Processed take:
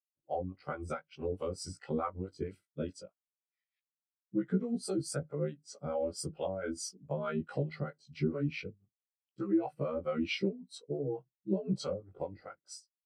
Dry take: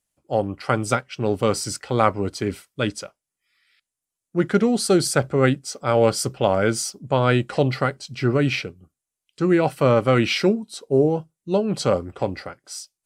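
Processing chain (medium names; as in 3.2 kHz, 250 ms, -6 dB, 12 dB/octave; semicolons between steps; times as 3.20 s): short-time spectra conjugated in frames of 42 ms; compression 6:1, threshold -27 dBFS, peak gain reduction 11.5 dB; harmonic tremolo 4.6 Hz, depth 70%, crossover 530 Hz; spectral contrast expander 1.5:1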